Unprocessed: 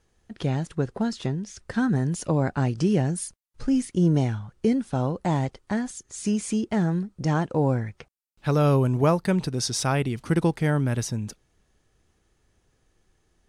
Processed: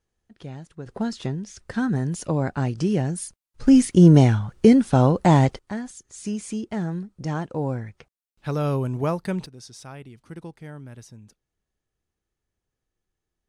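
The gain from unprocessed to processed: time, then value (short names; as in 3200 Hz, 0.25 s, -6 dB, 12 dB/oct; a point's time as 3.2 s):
-11.5 dB
from 0.86 s -0.5 dB
from 3.67 s +8.5 dB
from 5.59 s -4 dB
from 9.46 s -16.5 dB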